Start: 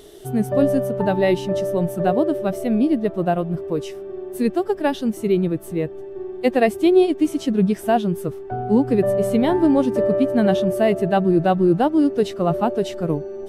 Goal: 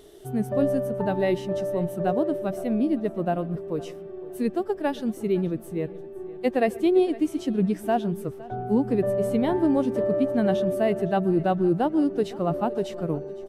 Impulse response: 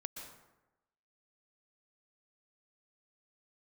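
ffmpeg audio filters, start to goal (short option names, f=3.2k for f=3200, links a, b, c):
-filter_complex "[0:a]aecho=1:1:510|1020:0.1|0.027,asplit=2[a][b];[1:a]atrim=start_sample=2205,atrim=end_sample=6615,lowpass=2.7k[c];[b][c]afir=irnorm=-1:irlink=0,volume=-8dB[d];[a][d]amix=inputs=2:normalize=0,volume=-7.5dB"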